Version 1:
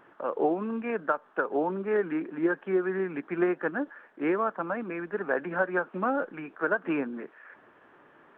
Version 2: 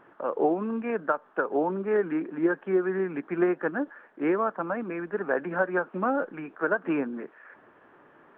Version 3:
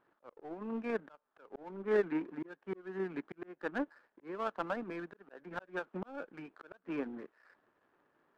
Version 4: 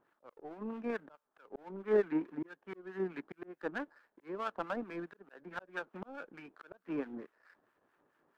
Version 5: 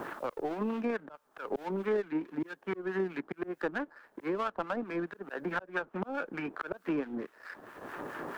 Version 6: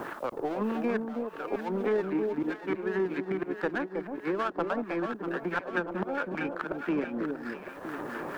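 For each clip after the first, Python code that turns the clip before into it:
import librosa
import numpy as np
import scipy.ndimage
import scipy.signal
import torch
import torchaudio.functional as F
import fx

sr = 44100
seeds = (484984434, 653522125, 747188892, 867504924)

y1 = fx.high_shelf(x, sr, hz=2900.0, db=-8.5)
y1 = y1 * 10.0 ** (2.0 / 20.0)
y2 = fx.auto_swell(y1, sr, attack_ms=349.0)
y2 = fx.power_curve(y2, sr, exponent=1.4)
y2 = y2 * 10.0 ** (-3.0 / 20.0)
y3 = fx.harmonic_tremolo(y2, sr, hz=4.6, depth_pct=70, crossover_hz=1000.0)
y3 = y3 * 10.0 ** (2.5 / 20.0)
y4 = fx.band_squash(y3, sr, depth_pct=100)
y4 = y4 * 10.0 ** (5.5 / 20.0)
y5 = fx.echo_alternate(y4, sr, ms=320, hz=860.0, feedback_pct=69, wet_db=-4)
y5 = y5 * 10.0 ** (2.5 / 20.0)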